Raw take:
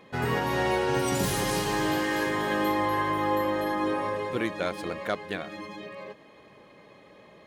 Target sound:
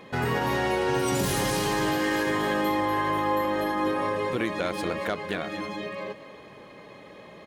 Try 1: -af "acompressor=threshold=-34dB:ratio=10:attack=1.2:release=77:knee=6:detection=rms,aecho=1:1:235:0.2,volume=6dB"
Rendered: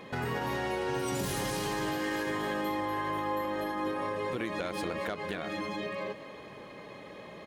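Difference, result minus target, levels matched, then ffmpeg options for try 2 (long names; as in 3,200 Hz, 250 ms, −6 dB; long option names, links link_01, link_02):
downward compressor: peak gain reduction +7 dB
-af "acompressor=threshold=-26dB:ratio=10:attack=1.2:release=77:knee=6:detection=rms,aecho=1:1:235:0.2,volume=6dB"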